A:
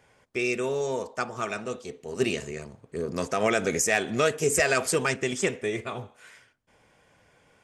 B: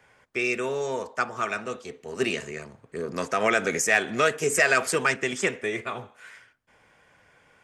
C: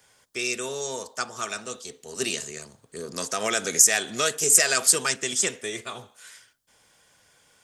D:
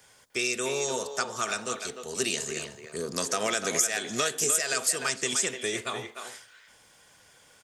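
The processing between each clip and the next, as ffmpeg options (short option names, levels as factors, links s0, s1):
-filter_complex "[0:a]equalizer=f=1600:w=0.82:g=7,acrossover=split=120|1200|1700[s0][s1][s2][s3];[s0]acompressor=threshold=0.002:ratio=6[s4];[s4][s1][s2][s3]amix=inputs=4:normalize=0,volume=0.841"
-af "aexciter=amount=7.4:drive=1.1:freq=3300,volume=0.596"
-filter_complex "[0:a]acompressor=threshold=0.0447:ratio=4,asplit=2[s0][s1];[s1]adelay=300,highpass=300,lowpass=3400,asoftclip=type=hard:threshold=0.0668,volume=0.447[s2];[s0][s2]amix=inputs=2:normalize=0,volume=1.33"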